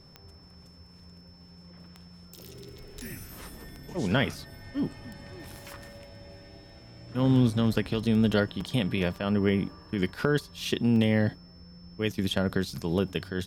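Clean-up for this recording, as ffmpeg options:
-af "adeclick=t=4,bandreject=f=5300:w=30"

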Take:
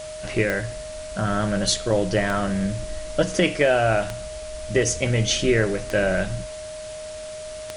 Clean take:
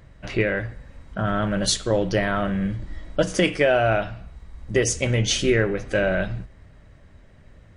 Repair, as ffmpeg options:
-af "adeclick=t=4,bandreject=f=620:w=30,afwtdn=0.01"

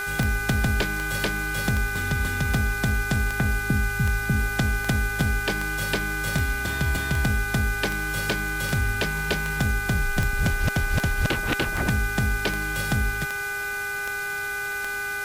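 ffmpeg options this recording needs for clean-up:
-af "adeclick=t=4,bandreject=f=403.6:t=h:w=4,bandreject=f=807.2:t=h:w=4,bandreject=f=1210.8:t=h:w=4,bandreject=f=1614.4:t=h:w=4,bandreject=f=2018:t=h:w=4,bandreject=f=2421.6:t=h:w=4,bandreject=f=1500:w=30,afwtdn=0.011"

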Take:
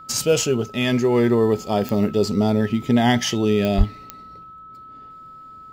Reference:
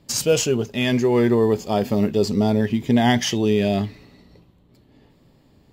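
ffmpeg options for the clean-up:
-filter_complex "[0:a]adeclick=t=4,bandreject=f=1300:w=30,asplit=3[s0][s1][s2];[s0]afade=t=out:st=3.77:d=0.02[s3];[s1]highpass=f=140:w=0.5412,highpass=f=140:w=1.3066,afade=t=in:st=3.77:d=0.02,afade=t=out:st=3.89:d=0.02[s4];[s2]afade=t=in:st=3.89:d=0.02[s5];[s3][s4][s5]amix=inputs=3:normalize=0"

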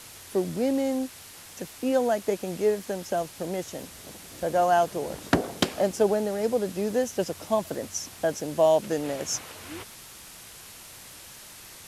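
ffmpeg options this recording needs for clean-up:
-af "adeclick=t=4,afwtdn=0.0063"

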